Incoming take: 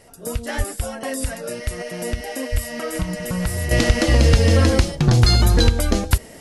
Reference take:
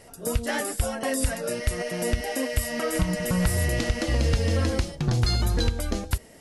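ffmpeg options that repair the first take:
-filter_complex "[0:a]asplit=3[a][b][c];[a]afade=t=out:st=0.57:d=0.02[d];[b]highpass=f=140:w=0.5412,highpass=f=140:w=1.3066,afade=t=in:st=0.57:d=0.02,afade=t=out:st=0.69:d=0.02[e];[c]afade=t=in:st=0.69:d=0.02[f];[d][e][f]amix=inputs=3:normalize=0,asplit=3[g][h][i];[g]afade=t=out:st=2.51:d=0.02[j];[h]highpass=f=140:w=0.5412,highpass=f=140:w=1.3066,afade=t=in:st=2.51:d=0.02,afade=t=out:st=2.63:d=0.02[k];[i]afade=t=in:st=2.63:d=0.02[l];[j][k][l]amix=inputs=3:normalize=0,asetnsamples=n=441:p=0,asendcmd='3.71 volume volume -9dB',volume=0dB"

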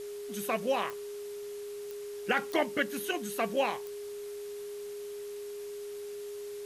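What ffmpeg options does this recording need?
-af "adeclick=t=4,bandreject=f=410:w=30,afftdn=nr=30:nf=-41"

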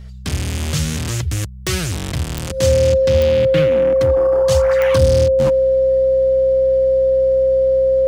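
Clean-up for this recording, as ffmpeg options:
-af "adeclick=t=4,bandreject=f=63.7:t=h:w=4,bandreject=f=127.4:t=h:w=4,bandreject=f=191.1:t=h:w=4,bandreject=f=530:w=30"

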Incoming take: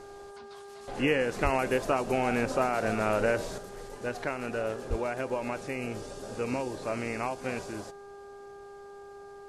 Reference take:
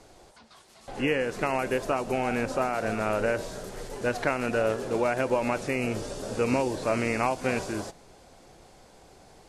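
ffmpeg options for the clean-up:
-filter_complex "[0:a]bandreject=f=401.7:t=h:w=4,bandreject=f=803.4:t=h:w=4,bandreject=f=1.2051k:t=h:w=4,bandreject=f=1.6068k:t=h:w=4,asplit=3[a][b][c];[a]afade=t=out:st=1.43:d=0.02[d];[b]highpass=f=140:w=0.5412,highpass=f=140:w=1.3066,afade=t=in:st=1.43:d=0.02,afade=t=out:st=1.55:d=0.02[e];[c]afade=t=in:st=1.55:d=0.02[f];[d][e][f]amix=inputs=3:normalize=0,asplit=3[g][h][i];[g]afade=t=out:st=4.89:d=0.02[j];[h]highpass=f=140:w=0.5412,highpass=f=140:w=1.3066,afade=t=in:st=4.89:d=0.02,afade=t=out:st=5.01:d=0.02[k];[i]afade=t=in:st=5.01:d=0.02[l];[j][k][l]amix=inputs=3:normalize=0,asetnsamples=n=441:p=0,asendcmd='3.58 volume volume 6.5dB',volume=0dB"

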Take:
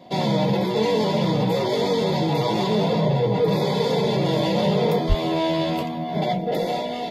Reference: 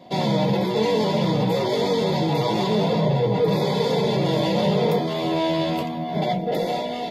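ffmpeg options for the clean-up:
-filter_complex "[0:a]asplit=3[a][b][c];[a]afade=t=out:st=5.08:d=0.02[d];[b]highpass=f=140:w=0.5412,highpass=f=140:w=1.3066,afade=t=in:st=5.08:d=0.02,afade=t=out:st=5.2:d=0.02[e];[c]afade=t=in:st=5.2:d=0.02[f];[d][e][f]amix=inputs=3:normalize=0"

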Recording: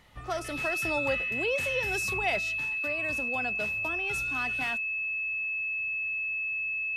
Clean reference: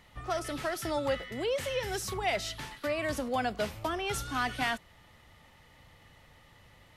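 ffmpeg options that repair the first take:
-af "bandreject=f=2.6k:w=30,asetnsamples=n=441:p=0,asendcmd='2.39 volume volume 5dB',volume=0dB"

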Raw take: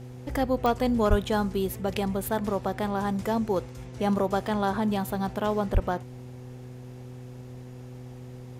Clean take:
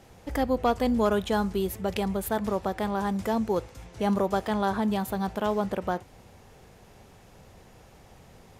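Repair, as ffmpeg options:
-filter_complex "[0:a]adeclick=t=4,bandreject=f=125:t=h:w=4,bandreject=f=250:t=h:w=4,bandreject=f=375:t=h:w=4,bandreject=f=500:t=h:w=4,asplit=3[a][b][c];[a]afade=t=out:st=1.09:d=0.02[d];[b]highpass=f=140:w=0.5412,highpass=f=140:w=1.3066,afade=t=in:st=1.09:d=0.02,afade=t=out:st=1.21:d=0.02[e];[c]afade=t=in:st=1.21:d=0.02[f];[d][e][f]amix=inputs=3:normalize=0,asplit=3[g][h][i];[g]afade=t=out:st=5.73:d=0.02[j];[h]highpass=f=140:w=0.5412,highpass=f=140:w=1.3066,afade=t=in:st=5.73:d=0.02,afade=t=out:st=5.85:d=0.02[k];[i]afade=t=in:st=5.85:d=0.02[l];[j][k][l]amix=inputs=3:normalize=0"

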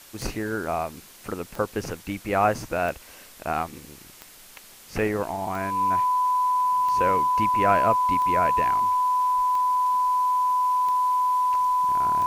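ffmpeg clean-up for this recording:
-af "adeclick=t=4,bandreject=f=1k:w=30,afftdn=nr=23:nf=-48"

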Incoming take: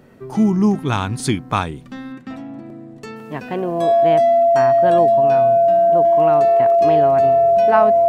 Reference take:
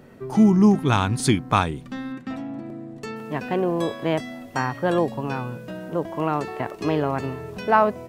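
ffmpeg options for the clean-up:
-af "bandreject=f=680:w=30"

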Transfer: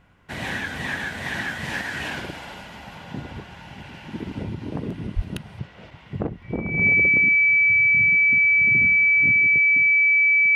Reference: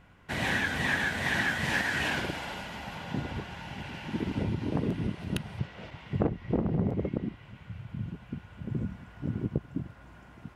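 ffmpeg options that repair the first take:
-filter_complex "[0:a]bandreject=f=2.3k:w=30,asplit=3[a][b][c];[a]afade=t=out:st=5.15:d=0.02[d];[b]highpass=f=140:w=0.5412,highpass=f=140:w=1.3066,afade=t=in:st=5.15:d=0.02,afade=t=out:st=5.27:d=0.02[e];[c]afade=t=in:st=5.27:d=0.02[f];[d][e][f]amix=inputs=3:normalize=0,asetnsamples=n=441:p=0,asendcmd='9.32 volume volume 8.5dB',volume=0dB"

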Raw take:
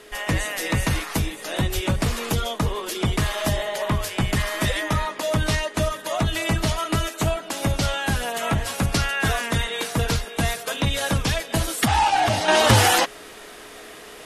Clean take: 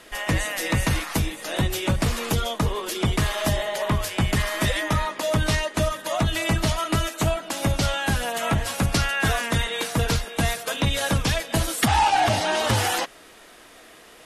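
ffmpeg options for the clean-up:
-filter_complex "[0:a]bandreject=f=420:w=30,asplit=3[a][b][c];[a]afade=t=out:st=1.74:d=0.02[d];[b]highpass=f=140:w=0.5412,highpass=f=140:w=1.3066,afade=t=in:st=1.74:d=0.02,afade=t=out:st=1.86:d=0.02[e];[c]afade=t=in:st=1.86:d=0.02[f];[d][e][f]amix=inputs=3:normalize=0,asplit=3[g][h][i];[g]afade=t=out:st=4.2:d=0.02[j];[h]highpass=f=140:w=0.5412,highpass=f=140:w=1.3066,afade=t=in:st=4.2:d=0.02,afade=t=out:st=4.32:d=0.02[k];[i]afade=t=in:st=4.32:d=0.02[l];[j][k][l]amix=inputs=3:normalize=0,asetnsamples=n=441:p=0,asendcmd='12.48 volume volume -6.5dB',volume=0dB"

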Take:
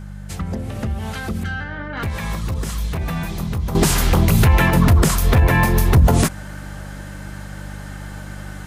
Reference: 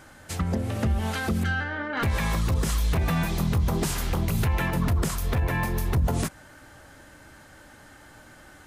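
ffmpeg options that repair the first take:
-af "bandreject=f=49.5:t=h:w=4,bandreject=f=99:t=h:w=4,bandreject=f=148.5:t=h:w=4,bandreject=f=198:t=h:w=4,asetnsamples=n=441:p=0,asendcmd='3.75 volume volume -11dB',volume=0dB"

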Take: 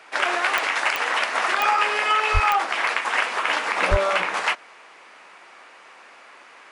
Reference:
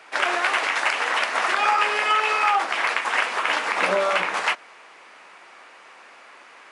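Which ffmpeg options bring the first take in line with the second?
-filter_complex "[0:a]adeclick=t=4,asplit=3[a][b][c];[a]afade=t=out:st=2.33:d=0.02[d];[b]highpass=f=140:w=0.5412,highpass=f=140:w=1.3066,afade=t=in:st=2.33:d=0.02,afade=t=out:st=2.45:d=0.02[e];[c]afade=t=in:st=2.45:d=0.02[f];[d][e][f]amix=inputs=3:normalize=0,asplit=3[g][h][i];[g]afade=t=out:st=3.9:d=0.02[j];[h]highpass=f=140:w=0.5412,highpass=f=140:w=1.3066,afade=t=in:st=3.9:d=0.02,afade=t=out:st=4.02:d=0.02[k];[i]afade=t=in:st=4.02:d=0.02[l];[j][k][l]amix=inputs=3:normalize=0"

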